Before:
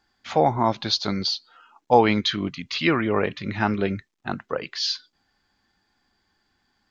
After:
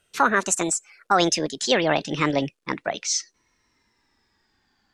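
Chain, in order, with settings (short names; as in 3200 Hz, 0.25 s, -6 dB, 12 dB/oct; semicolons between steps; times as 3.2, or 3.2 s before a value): speed glide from 182% -> 98%; maximiser +7 dB; gain -5.5 dB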